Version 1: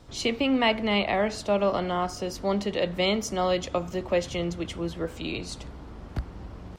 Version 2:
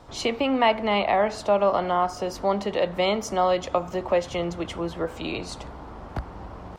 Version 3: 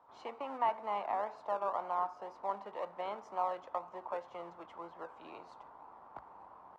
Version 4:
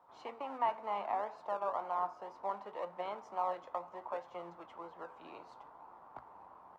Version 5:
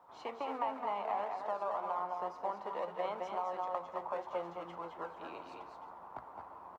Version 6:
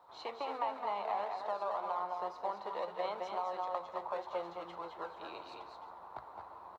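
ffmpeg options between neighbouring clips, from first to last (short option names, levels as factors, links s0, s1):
-filter_complex "[0:a]equalizer=f=880:t=o:w=1.8:g=10.5,asplit=2[s0][s1];[s1]acompressor=threshold=0.0562:ratio=6,volume=0.794[s2];[s0][s2]amix=inputs=2:normalize=0,volume=0.531"
-filter_complex "[0:a]asplit=2[s0][s1];[s1]acrusher=samples=35:mix=1:aa=0.000001:lfo=1:lforange=21:lforate=2,volume=0.376[s2];[s0][s2]amix=inputs=2:normalize=0,bandpass=f=960:t=q:w=3.2:csg=0,volume=0.447"
-af "flanger=delay=5.5:depth=6.4:regen=73:speed=0.68:shape=sinusoidal,volume=1.5"
-filter_complex "[0:a]acompressor=threshold=0.0141:ratio=5,asplit=2[s0][s1];[s1]aecho=0:1:212|223|363:0.447|0.422|0.126[s2];[s0][s2]amix=inputs=2:normalize=0,volume=1.5"
-af "equalizer=f=160:t=o:w=0.33:g=-6,equalizer=f=250:t=o:w=0.33:g=-8,equalizer=f=4000:t=o:w=0.33:g=12"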